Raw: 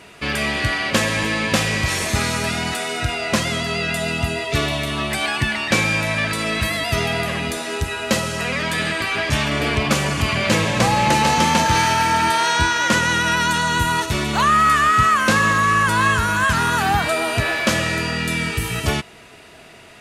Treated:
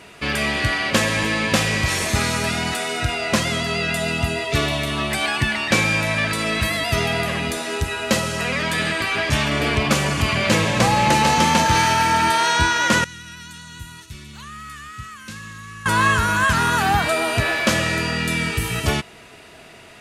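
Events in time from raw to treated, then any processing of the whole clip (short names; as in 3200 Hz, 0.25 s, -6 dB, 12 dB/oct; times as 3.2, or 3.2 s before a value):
13.04–15.86 passive tone stack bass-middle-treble 6-0-2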